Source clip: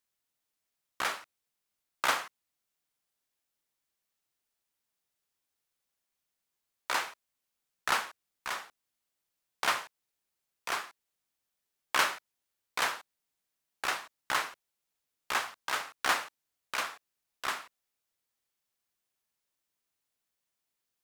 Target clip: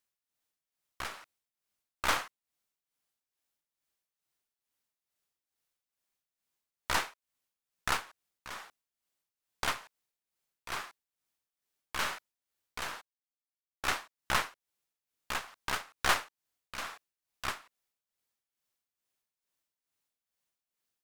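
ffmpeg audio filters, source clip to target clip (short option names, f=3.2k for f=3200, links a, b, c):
-filter_complex "[0:a]aeval=exprs='0.282*(cos(1*acos(clip(val(0)/0.282,-1,1)))-cos(1*PI/2))+0.0316*(cos(8*acos(clip(val(0)/0.282,-1,1)))-cos(8*PI/2))':c=same,asettb=1/sr,asplit=3[a][b][c];[a]atrim=end=12.844[d];[b]atrim=start=12.84:end=13.88,asetpts=PTS-STARTPTS,afade=t=in:d=0.004:c=qsin,afade=t=out:st=1.036:d=0.004:c=qsin,agate=range=-20dB:threshold=-40dB:ratio=16:detection=peak[e];[c]atrim=start=13.876[f];[d][e]acrossfade=d=0.004:c1=hsin:c2=qsin[g];[g][f]acrossfade=d=0.004:c1=qsin:c2=hsin,tremolo=f=2.3:d=0.68"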